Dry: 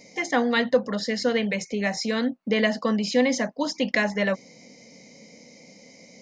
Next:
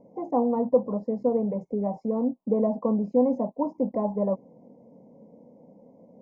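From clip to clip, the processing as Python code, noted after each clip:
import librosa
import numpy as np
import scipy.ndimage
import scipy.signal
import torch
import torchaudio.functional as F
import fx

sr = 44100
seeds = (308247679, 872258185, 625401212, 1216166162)

y = scipy.signal.sosfilt(scipy.signal.ellip(4, 1.0, 40, 1000.0, 'lowpass', fs=sr, output='sos'), x)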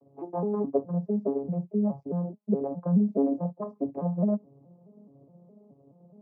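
y = fx.vocoder_arp(x, sr, chord='major triad', root=49, every_ms=211)
y = y * 10.0 ** (-1.5 / 20.0)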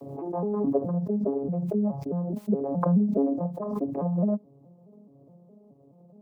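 y = fx.pre_swell(x, sr, db_per_s=39.0)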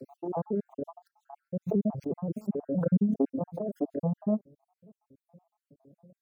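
y = fx.spec_dropout(x, sr, seeds[0], share_pct=60)
y = fx.vibrato_shape(y, sr, shape='saw_up', rate_hz=5.7, depth_cents=100.0)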